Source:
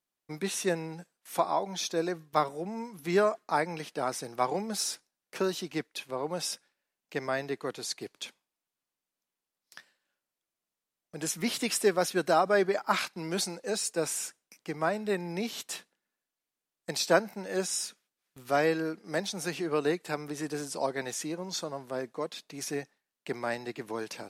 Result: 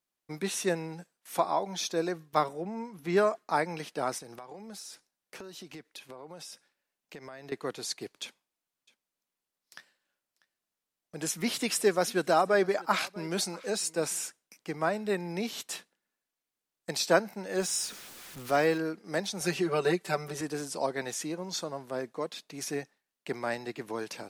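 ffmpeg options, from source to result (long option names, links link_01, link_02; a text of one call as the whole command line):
ffmpeg -i in.wav -filter_complex "[0:a]asettb=1/sr,asplit=3[link_01][link_02][link_03];[link_01]atrim=end=2.534[link_04];[link_02]atrim=start=2.53:end=3.17,asetpts=PTS-STARTPTS,afade=type=in:duration=0.004:curve=qsin,afade=type=out:start_time=0.636:duration=0.004:curve=qsin,highshelf=frequency=4100:gain=-8.5[link_05];[link_03]atrim=start=3.166[link_06];[link_04][link_05]acrossfade=duration=0.004:curve1=hsin:curve2=qsin[link_07];[link_07][link_06]acrossfade=duration=0.004:curve1=qsin:curve2=hsin,asettb=1/sr,asplit=3[link_08][link_09][link_10];[link_08]atrim=end=4.184[link_11];[link_09]atrim=start=4.18:end=7.52,asetpts=PTS-STARTPTS,afade=type=in:duration=0.004:curve=qsin,afade=type=out:start_time=3.336:duration=0.004:curve=qsin,acompressor=threshold=-41dB:ratio=10:attack=3.2:release=140:knee=1:detection=peak[link_12];[link_10]atrim=start=7.516[link_13];[link_11][link_12]acrossfade=duration=0.004:curve1=hsin:curve2=qsin[link_14];[link_14][link_13]acrossfade=duration=0.004:curve1=qsin:curve2=hsin,asettb=1/sr,asplit=3[link_15][link_16][link_17];[link_15]atrim=end=8.234[link_18];[link_16]atrim=start=8.23:end=14.25,asetpts=PTS-STARTPTS,afade=type=in:duration=0.004:curve=qsin,afade=type=out:start_time=6.016:duration=0.004:curve=qsin,aecho=1:1:643:0.0794,atrim=end_sample=265482[link_19];[link_17]atrim=start=14.246[link_20];[link_18][link_19]acrossfade=duration=0.004:curve1=hsin:curve2=qsin[link_21];[link_21][link_20]acrossfade=duration=0.004:curve1=qsin:curve2=hsin,asettb=1/sr,asplit=3[link_22][link_23][link_24];[link_22]atrim=end=17.584[link_25];[link_23]atrim=start=17.58:end=18.78,asetpts=PTS-STARTPTS,afade=type=in:duration=0.004:curve=qsin,afade=type=out:start_time=1.196:duration=0.004:curve=qsin,aeval=exprs='val(0)+0.5*0.00891*sgn(val(0))':channel_layout=same[link_26];[link_24]atrim=start=18.776[link_27];[link_25][link_26]acrossfade=duration=0.004:curve1=hsin:curve2=qsin[link_28];[link_28][link_27]acrossfade=duration=0.004:curve1=qsin:curve2=hsin,asettb=1/sr,asplit=3[link_29][link_30][link_31];[link_29]atrim=end=19.404[link_32];[link_30]atrim=start=19.4:end=20.41,asetpts=PTS-STARTPTS,afade=type=in:duration=0.004:curve=qsin,afade=type=out:start_time=1.006:duration=0.004:curve=qsin,aecho=1:1:5.2:1,atrim=end_sample=44541[link_33];[link_31]atrim=start=20.406[link_34];[link_32][link_33]acrossfade=duration=0.004:curve1=hsin:curve2=qsin[link_35];[link_35][link_34]acrossfade=duration=0.004:curve1=qsin:curve2=hsin" out.wav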